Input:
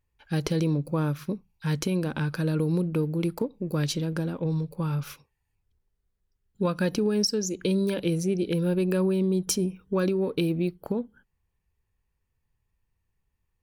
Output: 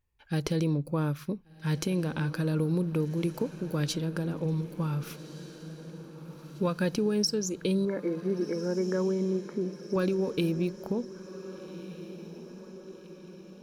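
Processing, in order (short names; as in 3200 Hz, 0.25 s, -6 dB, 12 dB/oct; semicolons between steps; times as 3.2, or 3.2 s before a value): 7.85–9.96 brick-wall FIR band-pass 180–2300 Hz; diffused feedback echo 1.532 s, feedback 54%, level -14 dB; gain -2.5 dB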